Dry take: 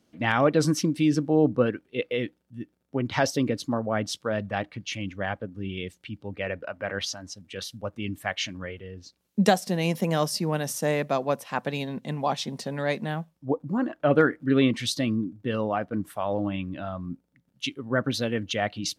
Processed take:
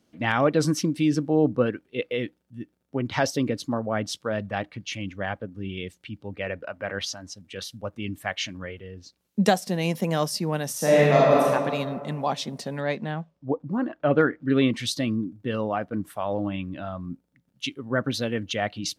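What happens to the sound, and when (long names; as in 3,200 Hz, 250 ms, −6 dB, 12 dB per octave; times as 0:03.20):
0:10.76–0:11.45: thrown reverb, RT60 1.9 s, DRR −7 dB
0:12.80–0:14.48: high-frequency loss of the air 96 metres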